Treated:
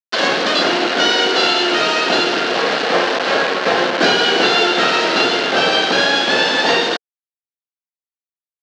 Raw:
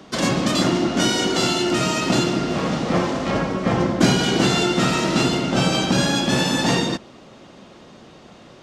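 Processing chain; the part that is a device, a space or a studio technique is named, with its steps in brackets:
hand-held game console (bit reduction 4 bits; loudspeaker in its box 430–5,100 Hz, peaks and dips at 450 Hz +8 dB, 730 Hz +4 dB, 1,600 Hz +8 dB, 2,900 Hz +4 dB, 4,200 Hz +4 dB)
level +4 dB

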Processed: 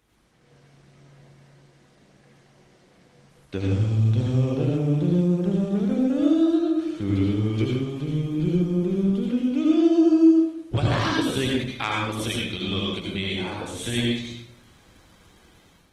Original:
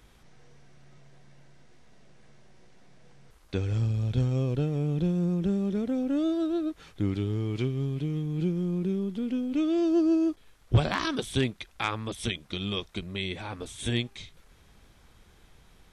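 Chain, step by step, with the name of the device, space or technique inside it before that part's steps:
far-field microphone of a smart speaker (convolution reverb RT60 0.75 s, pre-delay 73 ms, DRR −2 dB; high-pass filter 130 Hz 6 dB per octave; automatic gain control gain up to 8 dB; level −6 dB; Opus 20 kbit/s 48,000 Hz)

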